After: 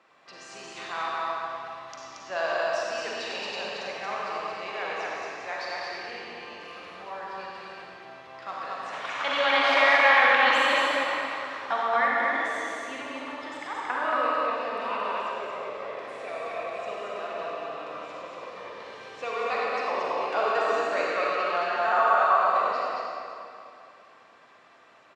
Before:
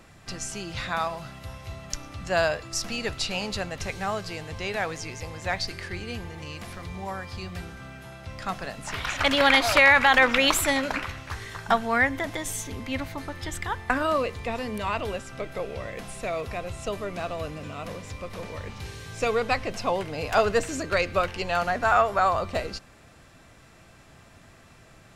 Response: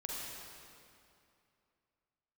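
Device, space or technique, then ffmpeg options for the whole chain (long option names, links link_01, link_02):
station announcement: -filter_complex "[0:a]highpass=450,lowpass=3800,equalizer=frequency=1100:width_type=o:width=0.33:gain=4.5,aecho=1:1:96.21|227.4:0.282|0.708[link_01];[1:a]atrim=start_sample=2205[link_02];[link_01][link_02]afir=irnorm=-1:irlink=0,volume=-3.5dB"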